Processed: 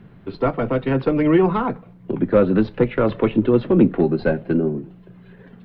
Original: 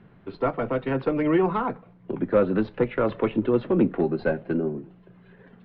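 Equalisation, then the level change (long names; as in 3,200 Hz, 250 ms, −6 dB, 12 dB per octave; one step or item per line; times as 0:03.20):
low-shelf EQ 380 Hz +7.5 dB
high-shelf EQ 3,500 Hz +9.5 dB
+1.5 dB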